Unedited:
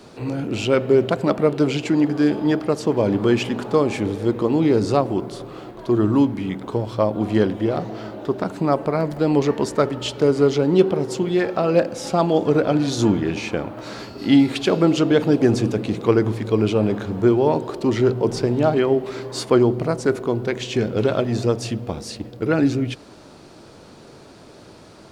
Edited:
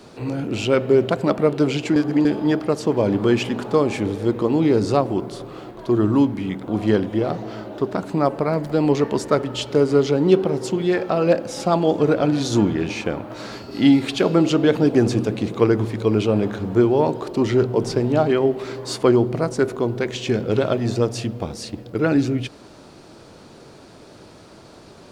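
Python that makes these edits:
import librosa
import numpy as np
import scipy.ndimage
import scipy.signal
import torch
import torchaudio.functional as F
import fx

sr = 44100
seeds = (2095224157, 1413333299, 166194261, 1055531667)

y = fx.edit(x, sr, fx.reverse_span(start_s=1.96, length_s=0.29),
    fx.cut(start_s=6.68, length_s=0.47), tone=tone)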